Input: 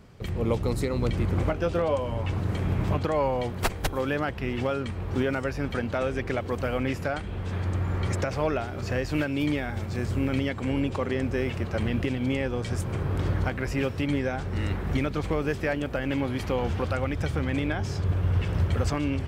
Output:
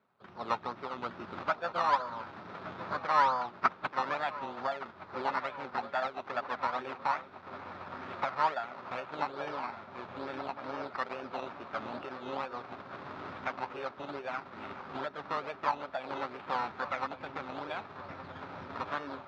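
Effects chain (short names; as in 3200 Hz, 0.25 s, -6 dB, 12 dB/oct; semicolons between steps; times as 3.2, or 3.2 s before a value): dynamic EQ 1300 Hz, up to +3 dB, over -45 dBFS, Q 0.9; decimation with a swept rate 15×, swing 60% 2.3 Hz; darkening echo 1.17 s, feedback 73%, low-pass 2400 Hz, level -11 dB; formant shift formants +6 st; speaker cabinet 300–3700 Hz, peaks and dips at 320 Hz -7 dB, 470 Hz -9 dB, 940 Hz +4 dB, 1300 Hz +8 dB, 2000 Hz -3 dB, 3000 Hz -7 dB; upward expander 1.5:1, over -48 dBFS; gain -3 dB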